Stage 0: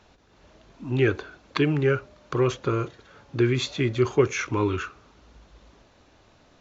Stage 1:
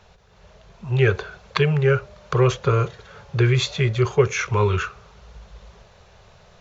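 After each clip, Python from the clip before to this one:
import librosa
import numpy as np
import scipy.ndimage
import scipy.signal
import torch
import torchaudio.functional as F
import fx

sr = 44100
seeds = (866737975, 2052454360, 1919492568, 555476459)

y = scipy.signal.sosfilt(scipy.signal.cheby1(2, 1.0, [190.0, 420.0], 'bandstop', fs=sr, output='sos'), x)
y = fx.low_shelf(y, sr, hz=130.0, db=4.5)
y = fx.rider(y, sr, range_db=4, speed_s=0.5)
y = F.gain(torch.from_numpy(y), 6.0).numpy()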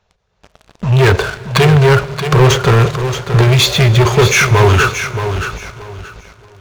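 y = fx.leveller(x, sr, passes=5)
y = fx.echo_feedback(y, sr, ms=626, feedback_pct=24, wet_db=-9.0)
y = fx.rev_plate(y, sr, seeds[0], rt60_s=3.4, hf_ratio=0.9, predelay_ms=0, drr_db=16.0)
y = F.gain(torch.from_numpy(y), -1.0).numpy()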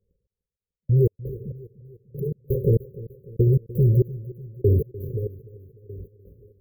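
y = fx.step_gate(x, sr, bpm=168, pattern='xxx.......xx..', floor_db=-60.0, edge_ms=4.5)
y = fx.brickwall_bandstop(y, sr, low_hz=560.0, high_hz=12000.0)
y = fx.echo_feedback(y, sr, ms=298, feedback_pct=54, wet_db=-18.0)
y = F.gain(torch.from_numpy(y), -7.5).numpy()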